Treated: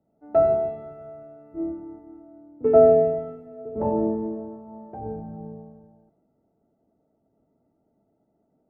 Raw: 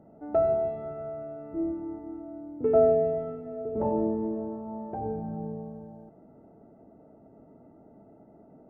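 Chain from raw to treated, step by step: three bands expanded up and down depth 70%

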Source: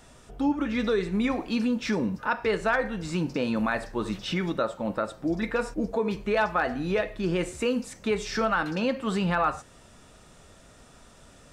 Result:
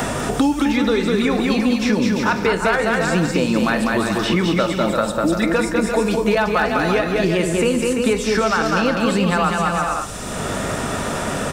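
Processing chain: treble shelf 7.8 kHz +11.5 dB; bouncing-ball echo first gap 200 ms, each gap 0.7×, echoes 5; hum 50 Hz, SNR 30 dB; three bands compressed up and down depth 100%; trim +6.5 dB

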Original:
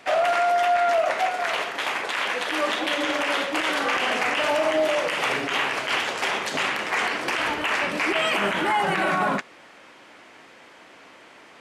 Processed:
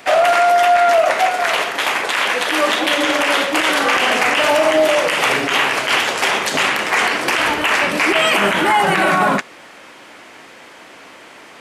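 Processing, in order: treble shelf 9.8 kHz +10 dB; trim +8 dB

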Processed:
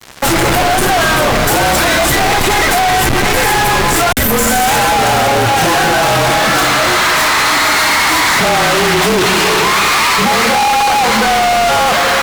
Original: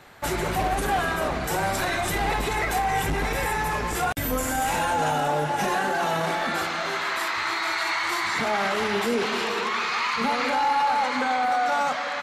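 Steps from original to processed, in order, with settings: frequency shift -35 Hz; fuzz box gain 41 dB, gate -44 dBFS; trim +3 dB

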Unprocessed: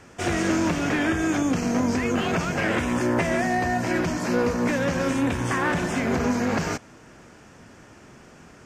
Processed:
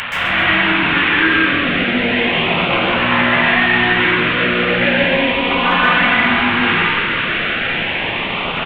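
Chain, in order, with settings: one-bit delta coder 16 kbps, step -24.5 dBFS; 5.03–6.13 s: comb 4.1 ms, depth 92%; LFO notch saw up 0.35 Hz 350–2000 Hz; peak limiter -17 dBFS, peak gain reduction 7 dB; tilt shelf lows -10 dB; frequency-shifting echo 134 ms, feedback 53%, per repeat +110 Hz, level -12 dB; reverberation RT60 1.3 s, pre-delay 121 ms, DRR -6.5 dB; trim +5 dB

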